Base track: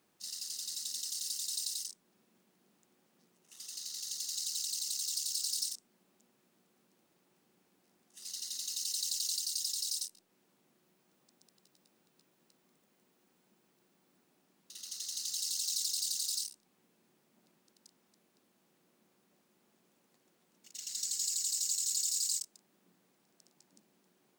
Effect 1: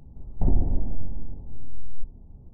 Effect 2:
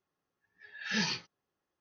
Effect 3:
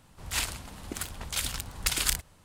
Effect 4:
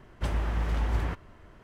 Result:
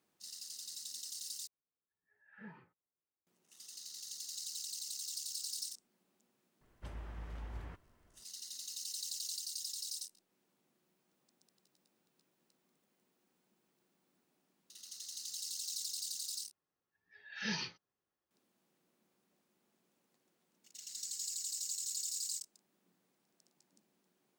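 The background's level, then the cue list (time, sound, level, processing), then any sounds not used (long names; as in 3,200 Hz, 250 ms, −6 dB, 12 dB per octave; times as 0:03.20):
base track −6.5 dB
0:01.47: overwrite with 2 −17.5 dB + low-pass filter 1,600 Hz 24 dB per octave
0:06.61: mix in 4 −17.5 dB
0:16.51: overwrite with 2 −6.5 dB
not used: 1, 3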